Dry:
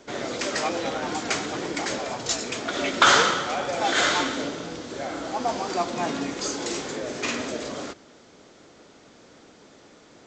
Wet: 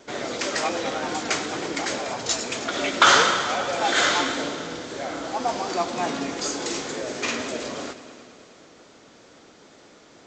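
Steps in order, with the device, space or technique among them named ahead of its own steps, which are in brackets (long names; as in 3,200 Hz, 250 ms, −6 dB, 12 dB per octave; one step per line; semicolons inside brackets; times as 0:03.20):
multi-head tape echo (echo machine with several playback heads 106 ms, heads all three, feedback 58%, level −20 dB; tape wow and flutter 23 cents)
low-shelf EQ 320 Hz −3.5 dB
level +1.5 dB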